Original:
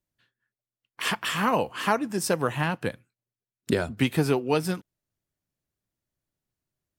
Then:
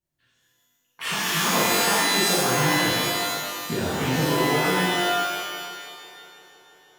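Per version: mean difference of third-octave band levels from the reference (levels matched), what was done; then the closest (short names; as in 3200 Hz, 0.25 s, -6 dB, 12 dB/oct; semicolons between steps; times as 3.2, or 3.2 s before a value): 13.0 dB: compressor, threshold -24 dBFS, peak gain reduction 7.5 dB; on a send: band-limited delay 0.17 s, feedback 83%, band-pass 800 Hz, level -18.5 dB; on the sum: shimmer reverb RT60 1.7 s, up +12 st, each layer -2 dB, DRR -9.5 dB; gain -5.5 dB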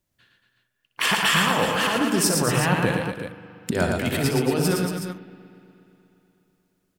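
9.5 dB: negative-ratio compressor -28 dBFS, ratio -1; tapped delay 63/114/135/230/329/371 ms -8/-4.5/-13.5/-8/-14.5/-9.5 dB; spring tank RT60 3.2 s, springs 40/60 ms, chirp 55 ms, DRR 16 dB; gain +5 dB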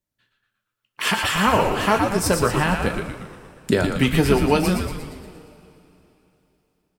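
7.0 dB: AGC gain up to 5 dB; on a send: frequency-shifting echo 0.117 s, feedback 55%, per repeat -110 Hz, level -5 dB; on the sum: two-slope reverb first 0.22 s, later 3.3 s, from -21 dB, DRR 6 dB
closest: third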